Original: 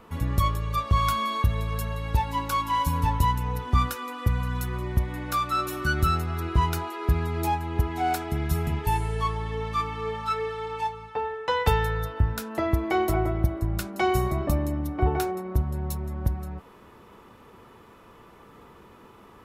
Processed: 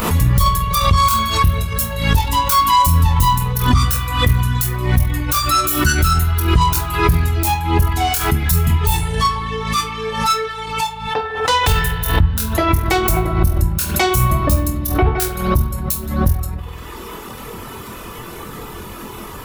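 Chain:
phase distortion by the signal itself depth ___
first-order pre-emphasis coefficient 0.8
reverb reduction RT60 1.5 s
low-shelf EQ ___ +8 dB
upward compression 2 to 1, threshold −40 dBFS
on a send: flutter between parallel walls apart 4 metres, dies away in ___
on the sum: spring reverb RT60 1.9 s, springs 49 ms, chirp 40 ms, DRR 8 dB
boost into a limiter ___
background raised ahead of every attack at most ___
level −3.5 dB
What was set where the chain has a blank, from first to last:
0.16 ms, 200 Hz, 0.21 s, +24.5 dB, 67 dB per second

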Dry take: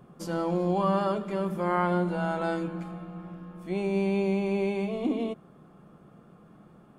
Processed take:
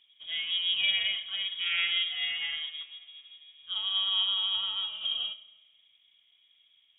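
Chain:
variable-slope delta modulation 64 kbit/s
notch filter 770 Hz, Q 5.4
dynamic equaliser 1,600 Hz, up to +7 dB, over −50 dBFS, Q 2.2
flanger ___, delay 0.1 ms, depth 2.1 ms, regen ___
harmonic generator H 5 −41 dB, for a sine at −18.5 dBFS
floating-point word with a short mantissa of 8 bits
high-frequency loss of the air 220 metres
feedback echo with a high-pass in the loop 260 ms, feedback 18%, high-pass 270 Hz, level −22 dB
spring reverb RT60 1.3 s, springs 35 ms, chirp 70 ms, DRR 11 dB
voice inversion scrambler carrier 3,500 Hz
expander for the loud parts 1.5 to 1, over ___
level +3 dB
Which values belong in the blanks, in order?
0.71 Hz, −82%, −48 dBFS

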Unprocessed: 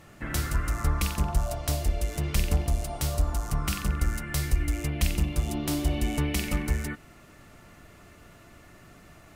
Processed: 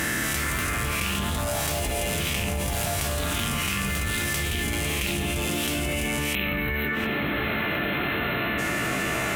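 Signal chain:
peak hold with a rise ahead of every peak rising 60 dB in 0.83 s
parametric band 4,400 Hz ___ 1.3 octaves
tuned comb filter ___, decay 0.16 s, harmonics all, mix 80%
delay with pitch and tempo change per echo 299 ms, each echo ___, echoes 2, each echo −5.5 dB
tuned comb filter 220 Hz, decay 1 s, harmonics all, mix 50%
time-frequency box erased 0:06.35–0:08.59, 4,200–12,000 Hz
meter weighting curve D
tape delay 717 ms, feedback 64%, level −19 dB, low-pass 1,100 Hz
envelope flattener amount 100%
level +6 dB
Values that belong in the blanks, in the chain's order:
−13 dB, 65 Hz, +3 semitones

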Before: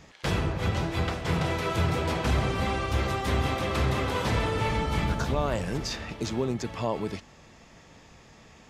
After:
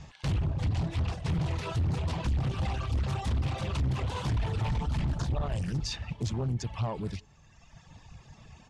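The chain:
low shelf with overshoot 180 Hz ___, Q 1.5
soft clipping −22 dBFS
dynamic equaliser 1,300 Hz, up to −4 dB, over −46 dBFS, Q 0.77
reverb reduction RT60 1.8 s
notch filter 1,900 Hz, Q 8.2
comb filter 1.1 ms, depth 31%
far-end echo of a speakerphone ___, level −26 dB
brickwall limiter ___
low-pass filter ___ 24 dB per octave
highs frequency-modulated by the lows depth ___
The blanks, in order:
+7 dB, 180 ms, −23.5 dBFS, 9,700 Hz, 0.36 ms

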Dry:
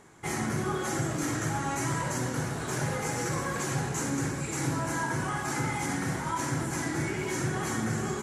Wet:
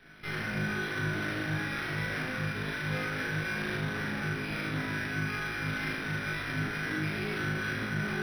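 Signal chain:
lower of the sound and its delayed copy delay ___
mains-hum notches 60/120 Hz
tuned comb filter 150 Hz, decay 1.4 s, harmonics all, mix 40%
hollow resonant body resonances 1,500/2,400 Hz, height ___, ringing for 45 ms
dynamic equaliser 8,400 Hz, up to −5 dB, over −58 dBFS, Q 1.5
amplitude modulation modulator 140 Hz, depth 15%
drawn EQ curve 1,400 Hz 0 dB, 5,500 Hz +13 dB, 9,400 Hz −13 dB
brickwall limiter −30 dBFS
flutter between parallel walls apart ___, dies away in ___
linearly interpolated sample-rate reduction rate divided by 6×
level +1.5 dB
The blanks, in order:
0.54 ms, 15 dB, 3.3 metres, 0.77 s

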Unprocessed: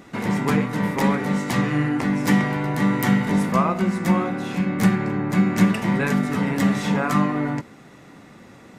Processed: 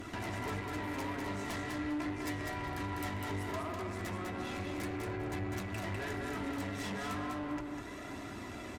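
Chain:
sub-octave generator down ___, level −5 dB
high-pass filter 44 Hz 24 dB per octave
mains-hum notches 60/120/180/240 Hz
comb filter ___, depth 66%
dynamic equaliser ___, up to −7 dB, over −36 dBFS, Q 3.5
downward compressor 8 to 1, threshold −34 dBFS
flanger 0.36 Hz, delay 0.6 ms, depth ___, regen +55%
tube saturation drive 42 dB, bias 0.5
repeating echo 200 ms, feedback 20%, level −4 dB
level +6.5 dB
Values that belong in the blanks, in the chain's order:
1 octave, 3 ms, 220 Hz, 4.4 ms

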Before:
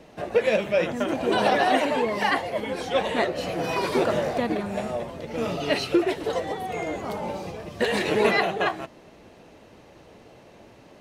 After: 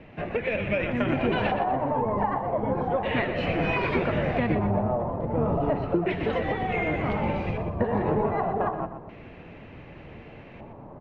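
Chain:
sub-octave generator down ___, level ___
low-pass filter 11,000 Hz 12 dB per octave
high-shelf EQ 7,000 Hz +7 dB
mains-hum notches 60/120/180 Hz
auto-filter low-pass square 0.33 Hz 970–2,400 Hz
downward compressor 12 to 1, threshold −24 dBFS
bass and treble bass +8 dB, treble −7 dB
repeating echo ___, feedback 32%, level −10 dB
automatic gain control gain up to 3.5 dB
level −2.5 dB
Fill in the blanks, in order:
1 octave, −4 dB, 122 ms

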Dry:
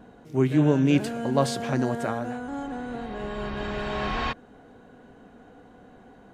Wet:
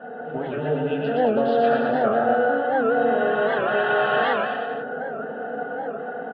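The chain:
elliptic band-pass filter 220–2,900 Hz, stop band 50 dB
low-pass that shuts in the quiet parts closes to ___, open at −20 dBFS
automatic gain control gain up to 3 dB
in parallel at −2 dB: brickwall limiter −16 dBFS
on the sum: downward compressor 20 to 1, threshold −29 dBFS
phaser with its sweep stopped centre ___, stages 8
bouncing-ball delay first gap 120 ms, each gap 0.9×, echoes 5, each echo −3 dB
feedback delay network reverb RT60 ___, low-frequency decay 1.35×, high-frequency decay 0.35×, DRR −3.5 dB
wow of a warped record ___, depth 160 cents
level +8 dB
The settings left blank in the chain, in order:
2,100 Hz, 1,500 Hz, 0.33 s, 78 rpm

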